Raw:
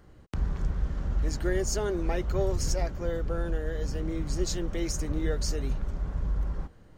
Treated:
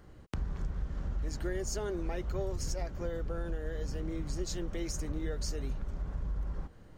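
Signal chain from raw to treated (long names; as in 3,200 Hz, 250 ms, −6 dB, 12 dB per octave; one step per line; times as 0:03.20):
downward compressor 2.5 to 1, threshold −34 dBFS, peak gain reduction 8.5 dB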